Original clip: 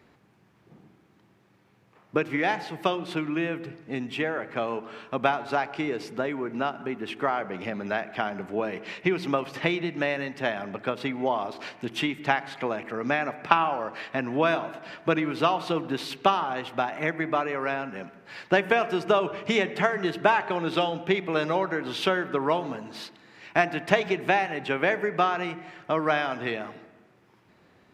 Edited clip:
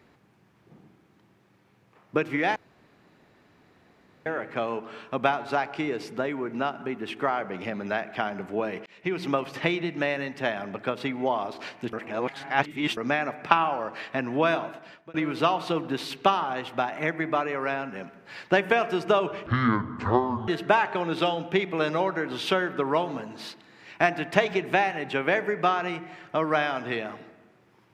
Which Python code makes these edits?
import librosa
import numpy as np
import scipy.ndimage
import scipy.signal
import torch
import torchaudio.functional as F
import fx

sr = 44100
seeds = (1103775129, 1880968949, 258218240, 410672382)

y = fx.edit(x, sr, fx.room_tone_fill(start_s=2.56, length_s=1.7),
    fx.fade_in_span(start_s=8.86, length_s=0.38),
    fx.reverse_span(start_s=11.93, length_s=1.04),
    fx.fade_out_span(start_s=14.63, length_s=0.51),
    fx.speed_span(start_s=19.46, length_s=0.57, speed=0.56), tone=tone)